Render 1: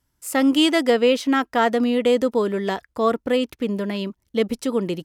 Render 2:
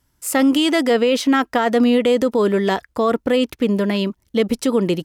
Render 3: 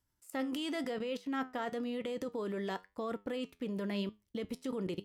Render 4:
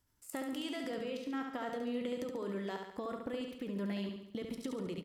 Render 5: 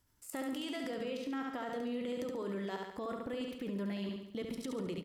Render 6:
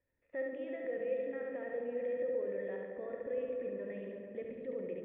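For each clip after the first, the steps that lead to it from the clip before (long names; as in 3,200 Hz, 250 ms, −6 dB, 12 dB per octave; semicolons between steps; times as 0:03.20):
brickwall limiter −15 dBFS, peak gain reduction 8 dB; level +6.5 dB
output level in coarse steps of 23 dB; flanger 0.97 Hz, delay 9.2 ms, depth 2.8 ms, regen +76%; level −8.5 dB
downward compressor 6 to 1, threshold −42 dBFS, peak gain reduction 10.5 dB; on a send: repeating echo 70 ms, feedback 53%, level −5 dB; on the sum: level +4 dB
brickwall limiter −34 dBFS, peak gain reduction 6.5 dB; level +3 dB
formant resonators in series e; echo whose low-pass opens from repeat to repeat 112 ms, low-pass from 400 Hz, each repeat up 1 octave, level −3 dB; level +7.5 dB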